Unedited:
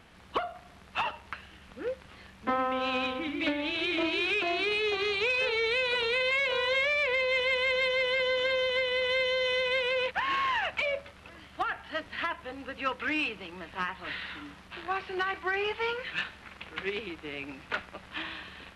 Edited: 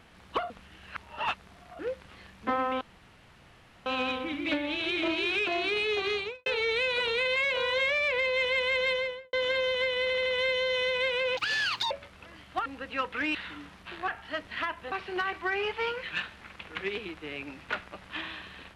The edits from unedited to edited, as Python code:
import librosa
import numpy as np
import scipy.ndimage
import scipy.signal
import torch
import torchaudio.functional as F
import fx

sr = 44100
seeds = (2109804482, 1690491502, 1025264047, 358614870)

y = fx.studio_fade_out(x, sr, start_s=5.07, length_s=0.34)
y = fx.studio_fade_out(y, sr, start_s=7.86, length_s=0.42)
y = fx.edit(y, sr, fx.reverse_span(start_s=0.5, length_s=1.29),
    fx.insert_room_tone(at_s=2.81, length_s=1.05),
    fx.stutter(start_s=8.97, slice_s=0.08, count=4),
    fx.speed_span(start_s=10.08, length_s=0.86, speed=1.6),
    fx.move(start_s=11.69, length_s=0.84, to_s=14.93),
    fx.cut(start_s=13.22, length_s=0.98), tone=tone)